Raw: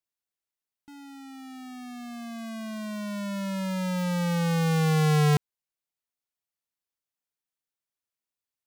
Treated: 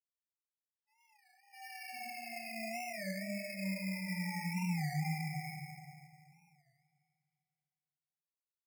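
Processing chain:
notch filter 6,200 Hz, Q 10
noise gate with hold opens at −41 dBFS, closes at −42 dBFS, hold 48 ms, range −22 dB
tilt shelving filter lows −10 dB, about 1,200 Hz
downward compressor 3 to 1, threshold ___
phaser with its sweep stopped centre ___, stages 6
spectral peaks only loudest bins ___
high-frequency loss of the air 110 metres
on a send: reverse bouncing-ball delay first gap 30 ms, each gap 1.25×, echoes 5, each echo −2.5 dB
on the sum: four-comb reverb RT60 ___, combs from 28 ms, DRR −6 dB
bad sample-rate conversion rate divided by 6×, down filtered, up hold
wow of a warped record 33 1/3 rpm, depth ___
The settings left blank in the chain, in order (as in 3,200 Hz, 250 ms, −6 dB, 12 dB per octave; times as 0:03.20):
−35 dBFS, 1,300 Hz, 4, 2.4 s, 160 cents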